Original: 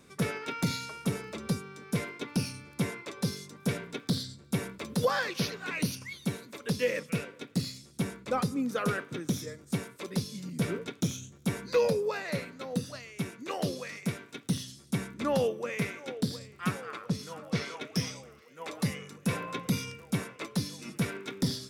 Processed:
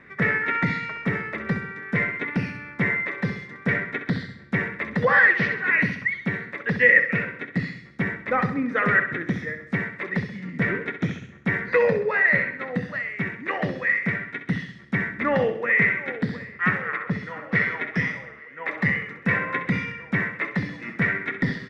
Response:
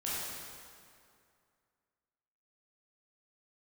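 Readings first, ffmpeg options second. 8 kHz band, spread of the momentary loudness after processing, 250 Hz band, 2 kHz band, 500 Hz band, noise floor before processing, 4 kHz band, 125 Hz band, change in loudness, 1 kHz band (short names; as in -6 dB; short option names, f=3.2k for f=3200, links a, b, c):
under -15 dB, 11 LU, +5.0 dB, +18.5 dB, +5.5 dB, -55 dBFS, -4.5 dB, +4.5 dB, +9.5 dB, +8.5 dB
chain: -af "lowpass=f=1.9k:t=q:w=13,aecho=1:1:65|130|195|260|325:0.316|0.155|0.0759|0.0372|0.0182,volume=4dB"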